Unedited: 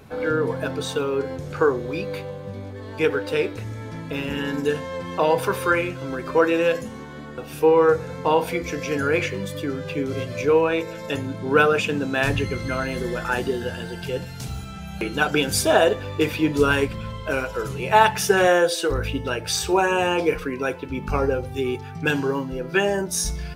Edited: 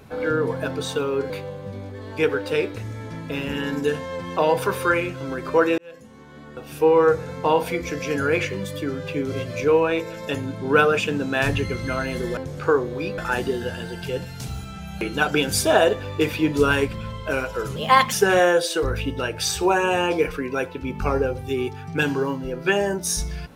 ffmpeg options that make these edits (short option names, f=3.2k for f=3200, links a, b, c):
-filter_complex "[0:a]asplit=7[a][b][c][d][e][f][g];[a]atrim=end=1.302[h];[b]atrim=start=2.108:end=6.59,asetpts=PTS-STARTPTS,afade=t=out:st=4.478:d=0.004:c=hsin[i];[c]atrim=start=6.59:end=13.182,asetpts=PTS-STARTPTS,afade=t=in:d=1.16[j];[d]atrim=start=1.298:end=2.112[k];[e]atrim=start=13.178:end=17.764[l];[f]atrim=start=17.76:end=18.2,asetpts=PTS-STARTPTS,asetrate=53361,aresample=44100,atrim=end_sample=16036,asetpts=PTS-STARTPTS[m];[g]atrim=start=18.196[n];[i][j]concat=n=2:v=0:a=1[o];[h][o]acrossfade=d=0.004:c1=hsin:c2=hsin[p];[p][k]acrossfade=d=0.004:c1=hsin:c2=hsin[q];[q][l]acrossfade=d=0.004:c1=hsin:c2=hsin[r];[r][m]acrossfade=d=0.004:c1=hsin:c2=hsin[s];[s][n]acrossfade=d=0.004:c1=hsin:c2=hsin"